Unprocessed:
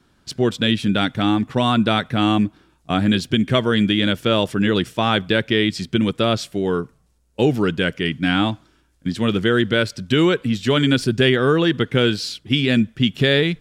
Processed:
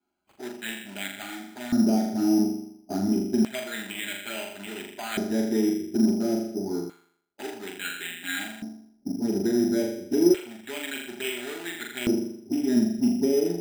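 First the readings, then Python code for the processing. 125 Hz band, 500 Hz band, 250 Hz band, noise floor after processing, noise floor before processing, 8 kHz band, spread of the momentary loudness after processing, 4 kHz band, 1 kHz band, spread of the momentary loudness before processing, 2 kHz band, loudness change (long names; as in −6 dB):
−17.0 dB, −8.5 dB, −5.5 dB, −64 dBFS, −60 dBFS, +1.0 dB, 14 LU, −15.5 dB, −15.0 dB, 6 LU, −12.0 dB, −8.0 dB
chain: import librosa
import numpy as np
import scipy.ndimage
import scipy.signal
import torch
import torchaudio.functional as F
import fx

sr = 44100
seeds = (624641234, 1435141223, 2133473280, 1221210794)

p1 = fx.wiener(x, sr, points=25)
p2 = fx.low_shelf(p1, sr, hz=250.0, db=3.0)
p3 = p2 + 0.4 * np.pad(p2, (int(4.9 * sr / 1000.0), 0))[:len(p2)]
p4 = fx.env_flanger(p3, sr, rest_ms=11.2, full_db=-11.5)
p5 = fx.room_flutter(p4, sr, wall_m=7.0, rt60_s=0.68)
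p6 = 10.0 ** (-19.5 / 20.0) * (np.abs((p5 / 10.0 ** (-19.5 / 20.0) + 3.0) % 4.0 - 2.0) - 1.0)
p7 = p5 + F.gain(torch.from_numpy(p6), -10.5).numpy()
p8 = fx.fixed_phaser(p7, sr, hz=740.0, stages=8)
p9 = fx.filter_lfo_bandpass(p8, sr, shape='square', hz=0.29, low_hz=370.0, high_hz=2400.0, q=0.98)
p10 = np.repeat(p9[::8], 8)[:len(p9)]
y = F.gain(torch.from_numpy(p10), -2.0).numpy()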